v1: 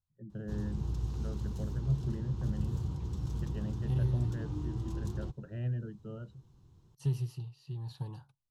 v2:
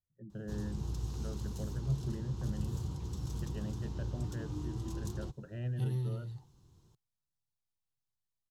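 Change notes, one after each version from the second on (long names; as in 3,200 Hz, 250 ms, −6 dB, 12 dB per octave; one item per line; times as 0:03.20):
second voice: entry +1.90 s
master: add bass and treble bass −3 dB, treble +7 dB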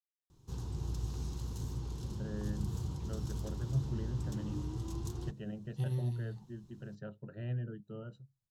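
first voice: entry +1.85 s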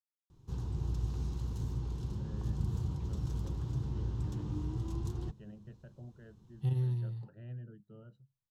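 first voice −10.0 dB
second voice: entry +0.85 s
master: add bass and treble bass +3 dB, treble −7 dB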